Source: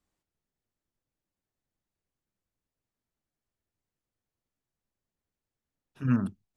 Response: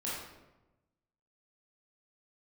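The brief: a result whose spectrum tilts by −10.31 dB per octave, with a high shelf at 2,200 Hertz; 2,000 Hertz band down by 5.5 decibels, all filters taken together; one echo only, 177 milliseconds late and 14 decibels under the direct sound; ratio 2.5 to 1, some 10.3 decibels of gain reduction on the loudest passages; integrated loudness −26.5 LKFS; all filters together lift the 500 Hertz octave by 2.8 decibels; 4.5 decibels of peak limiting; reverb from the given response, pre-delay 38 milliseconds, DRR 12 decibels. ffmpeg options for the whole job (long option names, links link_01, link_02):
-filter_complex "[0:a]equalizer=frequency=500:width_type=o:gain=4,equalizer=frequency=2000:width_type=o:gain=-7,highshelf=frequency=2200:gain=-3,acompressor=threshold=-35dB:ratio=2.5,alimiter=level_in=4.5dB:limit=-24dB:level=0:latency=1,volume=-4.5dB,aecho=1:1:177:0.2,asplit=2[link_01][link_02];[1:a]atrim=start_sample=2205,adelay=38[link_03];[link_02][link_03]afir=irnorm=-1:irlink=0,volume=-15.5dB[link_04];[link_01][link_04]amix=inputs=2:normalize=0,volume=13.5dB"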